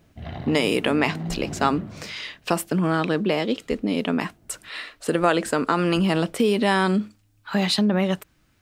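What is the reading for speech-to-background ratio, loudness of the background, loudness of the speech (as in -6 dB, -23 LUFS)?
11.5 dB, -35.0 LUFS, -23.5 LUFS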